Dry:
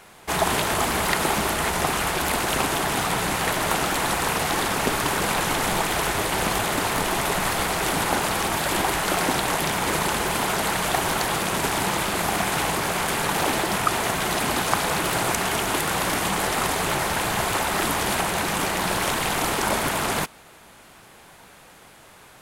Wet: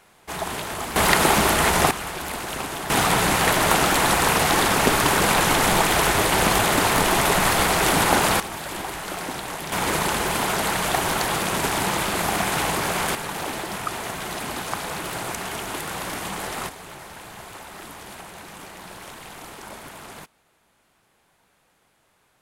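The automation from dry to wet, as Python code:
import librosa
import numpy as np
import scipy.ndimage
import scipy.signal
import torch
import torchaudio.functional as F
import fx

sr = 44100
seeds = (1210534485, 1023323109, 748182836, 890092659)

y = fx.gain(x, sr, db=fx.steps((0.0, -7.0), (0.96, 5.0), (1.91, -6.5), (2.9, 4.5), (8.4, -8.0), (9.72, 0.5), (13.15, -6.5), (16.69, -16.0)))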